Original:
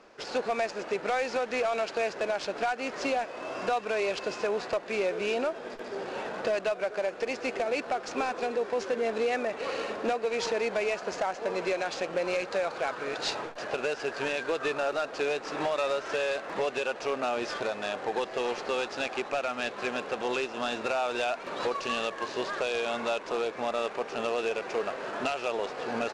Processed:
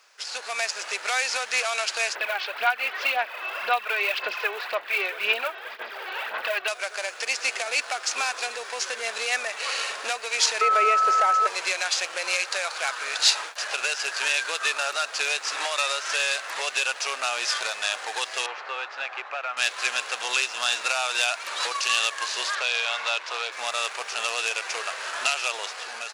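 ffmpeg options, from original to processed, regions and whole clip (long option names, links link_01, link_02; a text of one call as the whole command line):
ffmpeg -i in.wav -filter_complex "[0:a]asettb=1/sr,asplit=3[link_01][link_02][link_03];[link_01]atrim=end=2.154[link_04];[link_02]atrim=start=2.15:end=6.68,asetpts=PTS-STARTPTS,afade=type=in:duration=0.004:curve=qsin,afade=type=out:start_time=4.526:duration=0.004:curve=qsin,lowpass=frequency=3300:width=0.5412,lowpass=frequency=3300:width=1.3066,aphaser=in_gain=1:out_gain=1:delay=2.7:decay=0.54:speed=1.9:type=sinusoidal[link_05];[link_03]atrim=start=6.676[link_06];[link_04][link_05]acrossfade=duration=0.004:curve1=hsin:curve2=qsin[link_07];[link_07][link_06]acrossfade=duration=0.004:curve1=qsin:curve2=hsin,asettb=1/sr,asplit=3[link_08][link_09][link_10];[link_08]atrim=end=10.614[link_11];[link_09]atrim=start=10.61:end=11.47,asetpts=PTS-STARTPTS,afade=type=in:duration=0.004:curve=qsin,afade=type=out:start_time=0.856:duration=0.004:curve=qsin,acrossover=split=2700[link_12][link_13];[link_13]acompressor=threshold=-51dB:ratio=4:attack=1:release=60[link_14];[link_12][link_14]amix=inputs=2:normalize=0,highpass=frequency=410:width_type=q:width=4.5,aeval=exprs='val(0)+0.0708*sin(2*PI*1300*n/s)':channel_layout=same[link_15];[link_10]atrim=start=11.466[link_16];[link_11][link_15]acrossfade=duration=0.004:curve1=hsin:curve2=qsin[link_17];[link_17][link_16]acrossfade=duration=0.004:curve1=qsin:curve2=hsin,asettb=1/sr,asplit=3[link_18][link_19][link_20];[link_18]atrim=end=18.464[link_21];[link_19]atrim=start=18.46:end=19.57,asetpts=PTS-STARTPTS,afade=type=in:duration=0.004:curve=qsin,afade=type=out:start_time=1.106:duration=0.004:curve=qsin,lowpass=1700,equalizer=frequency=140:width=0.78:gain=-12.5[link_22];[link_20]atrim=start=19.566[link_23];[link_21][link_22]acrossfade=duration=0.004:curve1=hsin:curve2=qsin[link_24];[link_24][link_23]acrossfade=duration=0.004:curve1=qsin:curve2=hsin,asettb=1/sr,asplit=3[link_25][link_26][link_27];[link_25]atrim=end=22.554[link_28];[link_26]atrim=start=22.55:end=23.52,asetpts=PTS-STARTPTS,afade=type=in:duration=0.004:curve=qsin,afade=type=out:start_time=0.966:duration=0.004:curve=qsin,acrossover=split=270 5300:gain=0.0891 1 0.178[link_29][link_30][link_31];[link_29][link_30][link_31]amix=inputs=3:normalize=0,bandreject=frequency=50:width_type=h:width=6,bandreject=frequency=100:width_type=h:width=6,bandreject=frequency=150:width_type=h:width=6,bandreject=frequency=200:width_type=h:width=6,bandreject=frequency=250:width_type=h:width=6,bandreject=frequency=300:width_type=h:width=6,bandreject=frequency=350:width_type=h:width=6,bandreject=frequency=400:width_type=h:width=6[link_32];[link_27]atrim=start=23.516[link_33];[link_28][link_32]acrossfade=duration=0.004:curve1=hsin:curve2=qsin[link_34];[link_34][link_33]acrossfade=duration=0.004:curve1=qsin:curve2=hsin,highpass=1200,aemphasis=mode=production:type=75fm,dynaudnorm=framelen=110:gausssize=9:maxgain=7.5dB" out.wav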